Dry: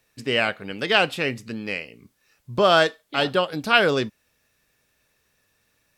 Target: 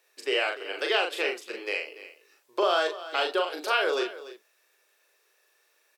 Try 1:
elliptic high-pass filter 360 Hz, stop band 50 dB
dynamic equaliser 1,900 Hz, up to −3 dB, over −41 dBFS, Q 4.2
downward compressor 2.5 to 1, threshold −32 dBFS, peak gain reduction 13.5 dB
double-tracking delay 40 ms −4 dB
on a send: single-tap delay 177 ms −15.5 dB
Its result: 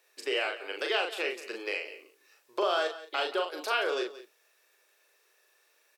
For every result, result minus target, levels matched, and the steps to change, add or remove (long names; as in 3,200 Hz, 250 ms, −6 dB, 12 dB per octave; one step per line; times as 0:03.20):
echo 114 ms early; downward compressor: peak gain reduction +4 dB
change: single-tap delay 291 ms −15.5 dB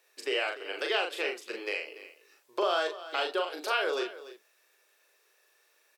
downward compressor: peak gain reduction +4 dB
change: downward compressor 2.5 to 1, threshold −25.5 dBFS, peak gain reduction 9.5 dB